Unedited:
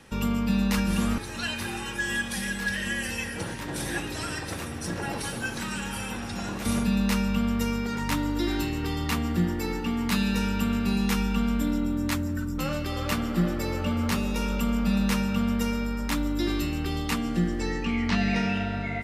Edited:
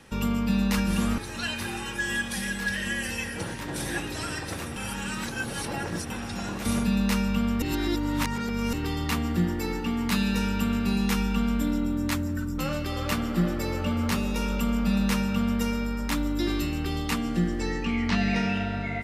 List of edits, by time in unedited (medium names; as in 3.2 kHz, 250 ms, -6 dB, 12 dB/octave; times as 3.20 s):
4.76–6.10 s: reverse
7.62–8.73 s: reverse